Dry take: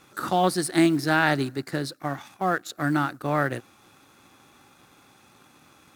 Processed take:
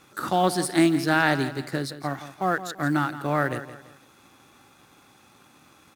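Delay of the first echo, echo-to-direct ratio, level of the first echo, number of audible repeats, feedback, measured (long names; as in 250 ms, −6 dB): 168 ms, −12.5 dB, −13.0 dB, 3, 35%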